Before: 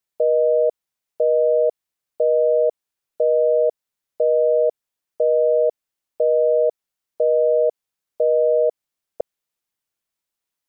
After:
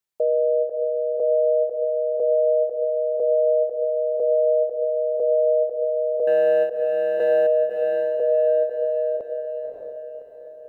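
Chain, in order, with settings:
0:06.27–0:07.47: leveller curve on the samples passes 1
feedback delay with all-pass diffusion 580 ms, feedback 47%, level −4 dB
every ending faded ahead of time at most 150 dB per second
level −3 dB

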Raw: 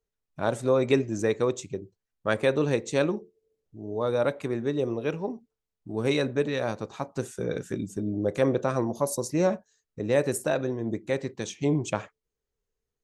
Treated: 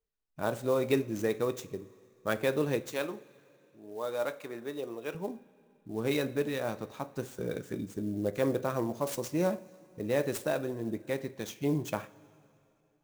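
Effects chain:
0:02.82–0:05.15: high-pass filter 620 Hz 6 dB per octave
coupled-rooms reverb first 0.3 s, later 2.7 s, from −18 dB, DRR 11 dB
converter with an unsteady clock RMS 0.02 ms
level −5 dB

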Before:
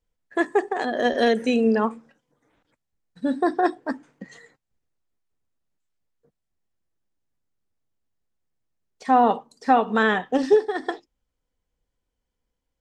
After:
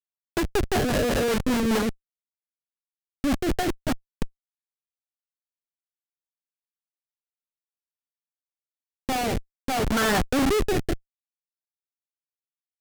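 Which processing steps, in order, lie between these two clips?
dynamic equaliser 1,400 Hz, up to +7 dB, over −45 dBFS, Q 7.6
comparator with hysteresis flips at −27 dBFS
rotating-speaker cabinet horn 5 Hz, later 0.6 Hz, at 0:03.95
level +5.5 dB

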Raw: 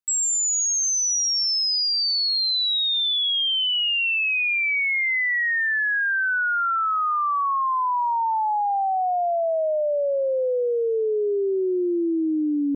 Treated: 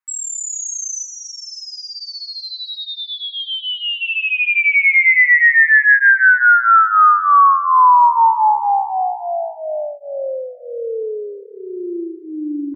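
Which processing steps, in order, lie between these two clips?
0:01.04–0:03.40: low-pass filter 3,800 Hz 12 dB per octave
flat-topped bell 1,400 Hz +14.5 dB
repeating echo 291 ms, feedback 46%, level −13 dB
through-zero flanger with one copy inverted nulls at 0.25 Hz, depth 6.9 ms

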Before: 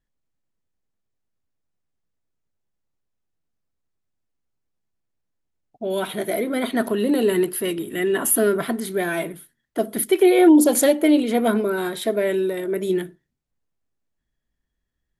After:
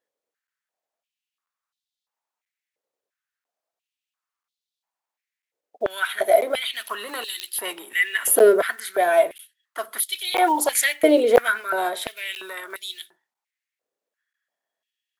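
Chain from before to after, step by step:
one scale factor per block 7 bits
regular buffer underruns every 0.99 s, samples 512, zero, from 0:00.47
high-pass on a step sequencer 2.9 Hz 490–3,700 Hz

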